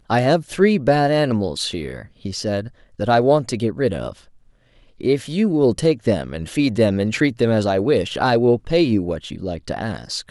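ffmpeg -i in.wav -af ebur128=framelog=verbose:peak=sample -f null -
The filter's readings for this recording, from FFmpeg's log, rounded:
Integrated loudness:
  I:         -19.5 LUFS
  Threshold: -29.9 LUFS
Loudness range:
  LRA:         3.6 LU
  Threshold: -40.0 LUFS
  LRA low:   -22.2 LUFS
  LRA high:  -18.6 LUFS
Sample peak:
  Peak:       -3.7 dBFS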